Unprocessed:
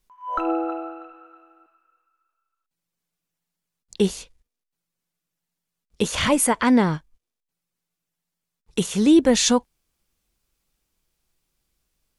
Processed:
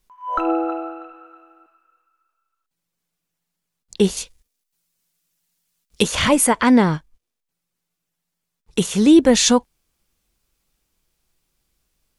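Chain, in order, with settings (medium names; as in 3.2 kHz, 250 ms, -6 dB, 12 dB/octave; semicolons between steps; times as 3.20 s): 4.16–6.02 s: treble shelf 3.6 kHz -> 2.1 kHz +10.5 dB; trim +3.5 dB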